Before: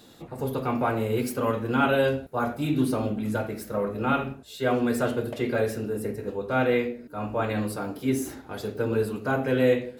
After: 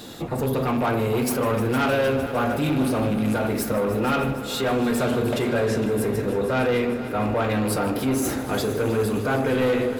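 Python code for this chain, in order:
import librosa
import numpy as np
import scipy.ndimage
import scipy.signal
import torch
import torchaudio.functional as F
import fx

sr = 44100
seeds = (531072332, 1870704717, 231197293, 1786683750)

p1 = fx.rattle_buzz(x, sr, strikes_db=-29.0, level_db=-33.0)
p2 = fx.lowpass(p1, sr, hz=fx.line((5.46, 4100.0), (5.9, 10000.0)), slope=12, at=(5.46, 5.9), fade=0.02)
p3 = fx.over_compress(p2, sr, threshold_db=-34.0, ratio=-1.0)
p4 = p2 + F.gain(torch.from_numpy(p3), -1.5).numpy()
p5 = 10.0 ** (-21.5 / 20.0) * np.tanh(p4 / 10.0 ** (-21.5 / 20.0))
p6 = fx.echo_heads(p5, sr, ms=153, heads='all three', feedback_pct=69, wet_db=-17.5)
y = F.gain(torch.from_numpy(p6), 4.0).numpy()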